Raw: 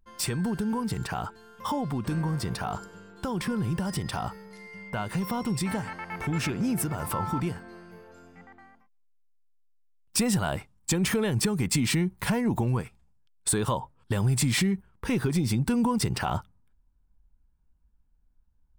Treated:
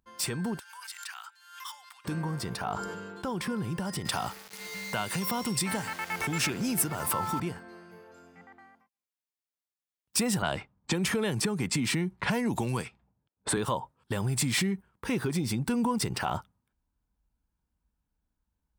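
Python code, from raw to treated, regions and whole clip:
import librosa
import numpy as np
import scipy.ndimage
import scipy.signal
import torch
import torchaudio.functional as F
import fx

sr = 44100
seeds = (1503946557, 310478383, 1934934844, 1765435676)

y = fx.chain(x, sr, fx.bessel_highpass(hz=1900.0, order=6),
    fx.pre_swell(db_per_s=78.0), at=(0.59, 2.05))
y = fx.chain(y, sr, fx.high_shelf(hz=4700.0, db=-5.0),
    fx.sustainer(db_per_s=24.0), at=(2.62, 3.3))
y = fx.chain(y, sr, fx.high_shelf(hz=2600.0, db=8.5),
    fx.sample_gate(floor_db=-41.0),
    fx.band_squash(depth_pct=40), at=(4.05, 7.4))
y = fx.chain(y, sr, fx.env_lowpass(base_hz=550.0, full_db=-22.0),
    fx.band_squash(depth_pct=70), at=(10.42, 13.57))
y = scipy.signal.sosfilt(scipy.signal.butter(2, 42.0, 'highpass', fs=sr, output='sos'), y)
y = fx.low_shelf(y, sr, hz=140.0, db=-9.0)
y = y * librosa.db_to_amplitude(-1.0)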